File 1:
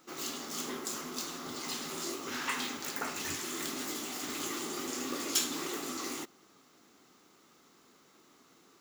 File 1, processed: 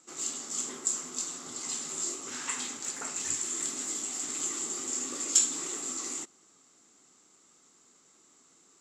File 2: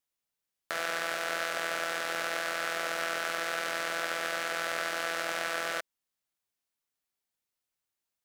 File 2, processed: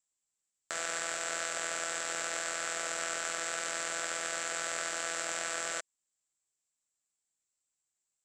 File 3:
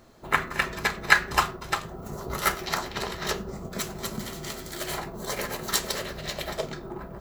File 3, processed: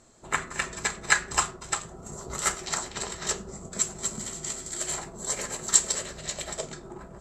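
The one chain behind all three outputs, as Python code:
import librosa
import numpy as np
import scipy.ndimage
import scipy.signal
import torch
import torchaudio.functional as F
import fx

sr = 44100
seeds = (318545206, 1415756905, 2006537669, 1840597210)

y = fx.lowpass_res(x, sr, hz=7600.0, q=10.0)
y = y * librosa.db_to_amplitude(-5.0)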